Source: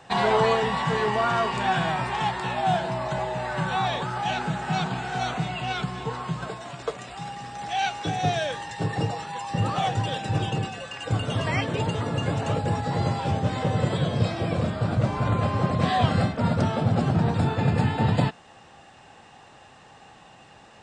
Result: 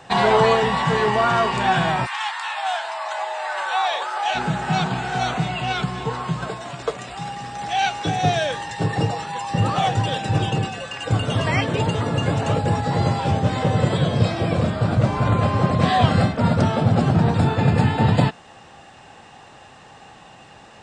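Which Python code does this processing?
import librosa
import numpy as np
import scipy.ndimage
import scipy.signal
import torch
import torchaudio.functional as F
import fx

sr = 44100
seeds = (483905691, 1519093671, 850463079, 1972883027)

y = fx.highpass(x, sr, hz=fx.line((2.05, 1100.0), (4.34, 470.0)), slope=24, at=(2.05, 4.34), fade=0.02)
y = y * 10.0 ** (5.0 / 20.0)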